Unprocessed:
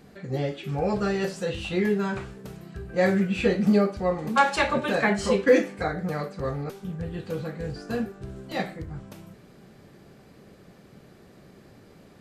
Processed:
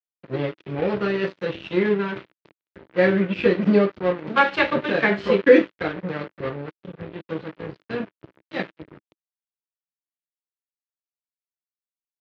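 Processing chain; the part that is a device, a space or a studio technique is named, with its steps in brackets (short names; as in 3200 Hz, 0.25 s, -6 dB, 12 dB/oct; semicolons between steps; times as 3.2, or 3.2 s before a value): blown loudspeaker (crossover distortion -33 dBFS; speaker cabinet 140–3600 Hz, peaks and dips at 230 Hz -5 dB, 320 Hz +5 dB, 760 Hz -8 dB, 1100 Hz -3 dB); gain +6.5 dB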